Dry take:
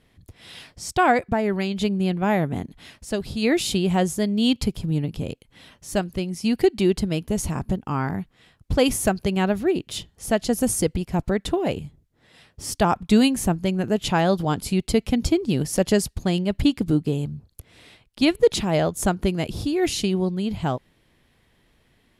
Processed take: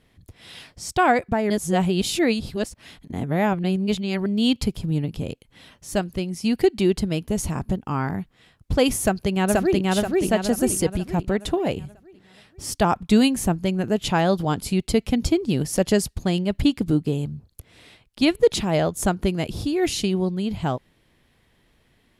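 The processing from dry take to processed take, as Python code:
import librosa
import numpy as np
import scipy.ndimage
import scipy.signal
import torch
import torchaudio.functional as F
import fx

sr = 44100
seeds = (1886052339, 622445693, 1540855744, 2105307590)

y = fx.echo_throw(x, sr, start_s=9.0, length_s=0.88, ms=480, feedback_pct=45, wet_db=-0.5)
y = fx.edit(y, sr, fx.reverse_span(start_s=1.5, length_s=2.76), tone=tone)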